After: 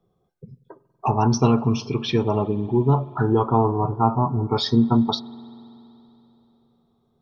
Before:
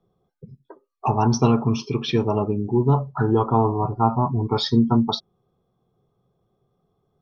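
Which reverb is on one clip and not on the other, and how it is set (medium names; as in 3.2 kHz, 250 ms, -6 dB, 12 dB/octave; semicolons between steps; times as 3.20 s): spring tank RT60 3.3 s, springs 47 ms, chirp 20 ms, DRR 19.5 dB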